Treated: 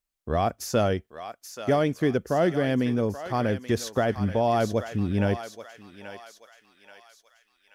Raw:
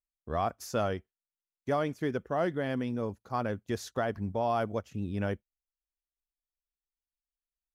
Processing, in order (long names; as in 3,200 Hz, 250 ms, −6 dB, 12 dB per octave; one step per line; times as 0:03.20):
dynamic equaliser 1,100 Hz, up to −7 dB, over −46 dBFS, Q 1.4
on a send: feedback echo with a high-pass in the loop 831 ms, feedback 56%, high-pass 1,100 Hz, level −7.5 dB
on the sum: level +8.5 dB